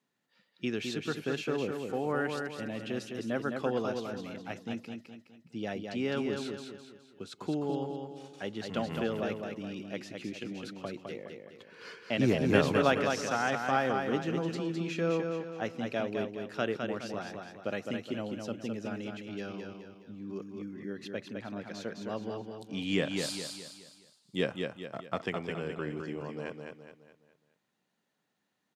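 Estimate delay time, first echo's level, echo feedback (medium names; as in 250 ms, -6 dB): 209 ms, -5.0 dB, 42%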